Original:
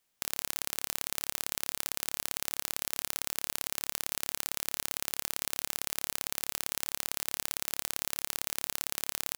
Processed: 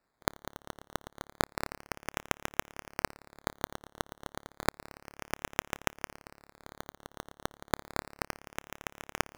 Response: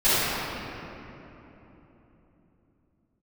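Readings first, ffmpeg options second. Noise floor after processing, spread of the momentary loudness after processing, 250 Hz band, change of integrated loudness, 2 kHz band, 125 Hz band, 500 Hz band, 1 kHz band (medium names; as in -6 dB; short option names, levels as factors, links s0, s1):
-80 dBFS, 13 LU, +8.5 dB, -5.5 dB, +2.0 dB, +8.5 dB, +8.0 dB, +6.5 dB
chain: -af "equalizer=f=3700:w=0.48:g=-9,areverse,acompressor=mode=upward:threshold=0.00316:ratio=2.5,areverse,acrusher=samples=14:mix=1:aa=0.000001:lfo=1:lforange=8.4:lforate=0.31"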